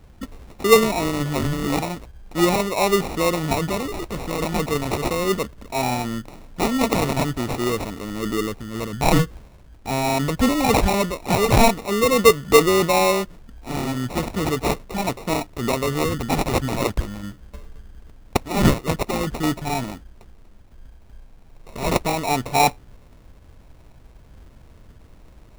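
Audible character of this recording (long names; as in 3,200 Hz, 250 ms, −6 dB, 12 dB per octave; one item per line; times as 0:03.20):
phaser sweep stages 2, 0.41 Hz, lowest notch 660–1,500 Hz
aliases and images of a low sample rate 1,600 Hz, jitter 0%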